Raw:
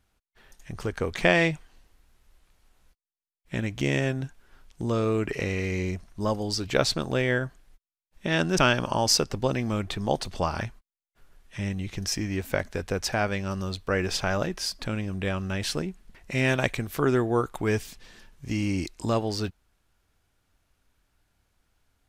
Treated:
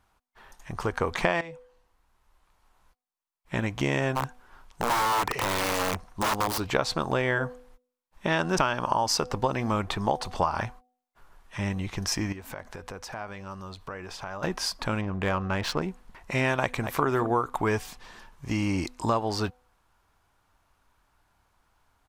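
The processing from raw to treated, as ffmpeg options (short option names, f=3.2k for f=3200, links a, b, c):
-filter_complex "[0:a]asplit=3[a][b][c];[a]afade=t=out:st=4.15:d=0.02[d];[b]aeval=exprs='(mod(15.8*val(0)+1,2)-1)/15.8':c=same,afade=t=in:st=4.15:d=0.02,afade=t=out:st=6.58:d=0.02[e];[c]afade=t=in:st=6.58:d=0.02[f];[d][e][f]amix=inputs=3:normalize=0,asettb=1/sr,asplit=3[g][h][i];[g]atrim=end=12.324[j];[h]atrim=start=12.32:end=14.43,asetpts=PTS-STARTPTS,afade=t=in:d=0.004:c=qsin,afade=t=out:st=2.106:d=0.004:c=qsin,acompressor=threshold=-38dB:ratio=8:attack=3.2:release=140:knee=1:detection=peak[k];[i]atrim=start=14.426[l];[j][k]acrossfade=d=0.004:c1=hsin:c2=qsin[m];[m][l]acrossfade=d=0.004:c1=qsin:c2=hsin,asettb=1/sr,asplit=3[n][o][p];[n]atrim=end=15.014[q];[o]atrim=start=15.01:end=15.82,asetpts=PTS-STARTPTS,afade=t=in:d=0.004:c=qsin,afade=t=out:st=0.806:d=0.004:c=qsin,adynamicsmooth=sensitivity=4.5:basefreq=2.4k[r];[p]atrim=start=15.816[s];[q][r]acrossfade=d=0.004:c1=hsin:c2=qsin[t];[t][s]acrossfade=d=0.004:c1=qsin:c2=hsin,asplit=2[u][v];[v]afade=t=in:st=16.6:d=0.01,afade=t=out:st=17.03:d=0.01,aecho=0:1:230|460|690:0.199526|0.0498816|0.0124704[w];[u][w]amix=inputs=2:normalize=0,asplit=2[x][y];[x]atrim=end=1.41,asetpts=PTS-STARTPTS,afade=t=out:st=1.406:d=0.004:c=hsin:silence=0.133352[z];[y]atrim=start=1.41,asetpts=PTS-STARTPTS,afade=t=in:d=2.16:silence=0.133352[aa];[z][aa]concat=n=2:v=0:a=1,equalizer=f=990:w=1.3:g=12.5,bandreject=f=249.3:t=h:w=4,bandreject=f=498.6:t=h:w=4,bandreject=f=747.9:t=h:w=4,acompressor=threshold=-21dB:ratio=6"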